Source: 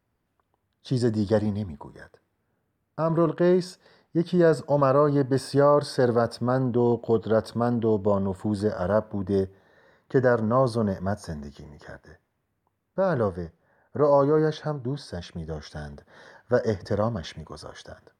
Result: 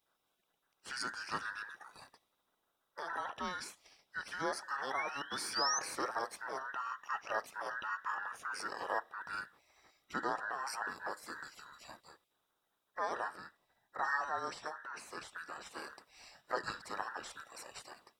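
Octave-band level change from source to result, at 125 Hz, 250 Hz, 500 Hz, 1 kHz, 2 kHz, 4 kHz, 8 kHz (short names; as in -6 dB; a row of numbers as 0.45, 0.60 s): -34.5 dB, -26.5 dB, -23.5 dB, -8.0 dB, -1.0 dB, -2.0 dB, n/a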